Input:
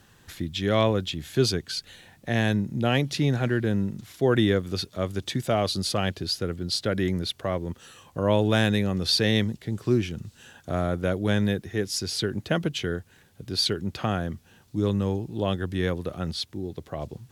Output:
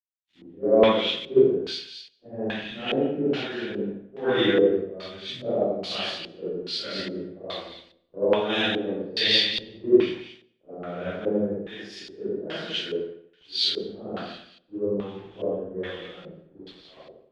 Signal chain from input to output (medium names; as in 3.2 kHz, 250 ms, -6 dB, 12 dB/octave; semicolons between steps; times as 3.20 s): phase randomisation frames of 200 ms; high-pass 250 Hz 12 dB/octave; small samples zeroed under -40 dBFS; two-band feedback delay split 1.8 kHz, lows 85 ms, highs 227 ms, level -3 dB; LFO low-pass square 1.2 Hz 470–3200 Hz; reverberation RT60 1.3 s, pre-delay 110 ms, DRR 19 dB; three bands expanded up and down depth 100%; trim -4.5 dB